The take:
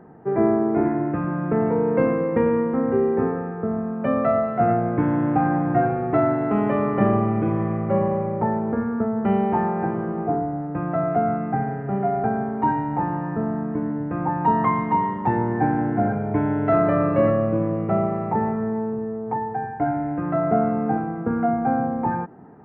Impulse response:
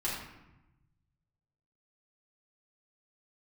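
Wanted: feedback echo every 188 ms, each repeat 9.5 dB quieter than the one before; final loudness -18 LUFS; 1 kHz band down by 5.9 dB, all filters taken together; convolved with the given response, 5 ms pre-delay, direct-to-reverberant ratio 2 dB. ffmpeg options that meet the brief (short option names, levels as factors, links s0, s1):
-filter_complex "[0:a]equalizer=f=1000:t=o:g=-8.5,aecho=1:1:188|376|564|752:0.335|0.111|0.0365|0.012,asplit=2[s0][s1];[1:a]atrim=start_sample=2205,adelay=5[s2];[s1][s2]afir=irnorm=-1:irlink=0,volume=0.422[s3];[s0][s3]amix=inputs=2:normalize=0,volume=1.5"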